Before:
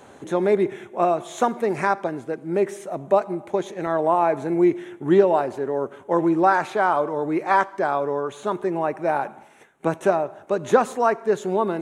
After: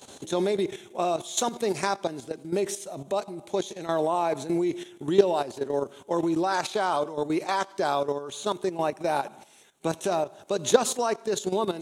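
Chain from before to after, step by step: level held to a coarse grid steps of 12 dB; resonant high shelf 2.7 kHz +12.5 dB, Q 1.5

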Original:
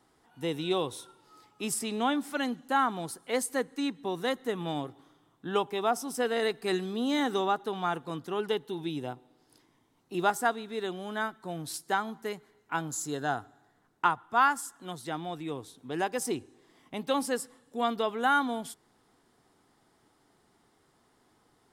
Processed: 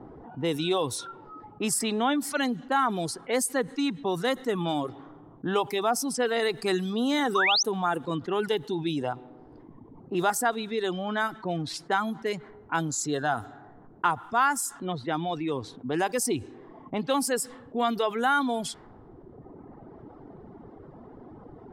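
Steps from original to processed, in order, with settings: level-controlled noise filter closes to 580 Hz, open at -28.5 dBFS; painted sound rise, 7.35–7.63 s, 1–6.4 kHz -25 dBFS; reverb removal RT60 1.1 s; level flattener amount 50%

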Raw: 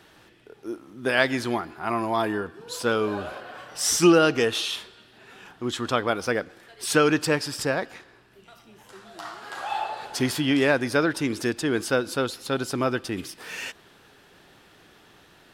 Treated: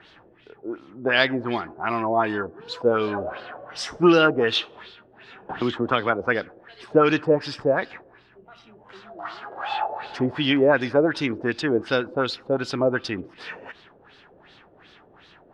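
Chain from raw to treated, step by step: LFO low-pass sine 2.7 Hz 540–4400 Hz; 5.49–6.27 s: three bands compressed up and down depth 70%

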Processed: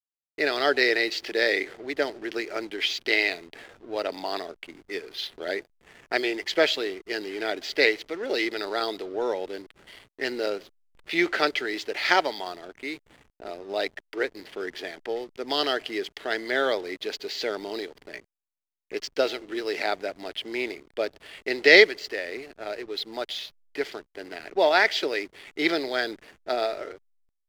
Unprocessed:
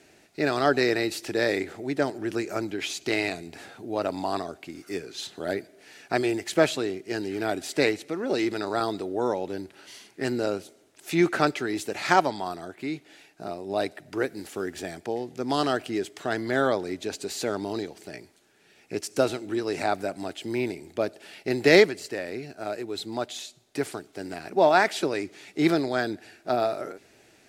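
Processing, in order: level-controlled noise filter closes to 2.4 kHz, open at -23.5 dBFS; cabinet simulation 410–6100 Hz, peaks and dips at 450 Hz +4 dB, 760 Hz -3 dB, 1.1 kHz -5 dB, 2 kHz +8 dB, 3.2 kHz +9 dB, 4.7 kHz +7 dB; hysteresis with a dead band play -39.5 dBFS

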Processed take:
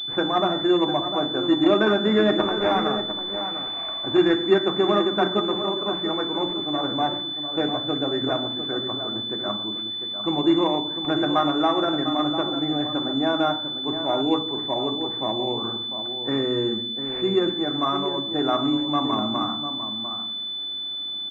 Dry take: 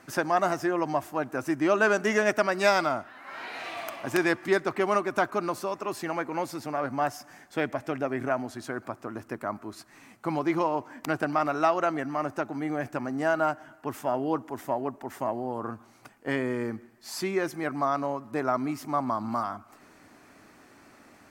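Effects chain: 2.33–3.77 s: cycle switcher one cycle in 2, muted; de-hum 116.7 Hz, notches 30; dynamic bell 310 Hz, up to +5 dB, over -37 dBFS, Q 0.91; echo from a far wall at 120 m, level -9 dB; on a send at -2 dB: reverberation RT60 0.70 s, pre-delay 3 ms; on the sum: class-D stage that switches slowly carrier 3.5 kHz

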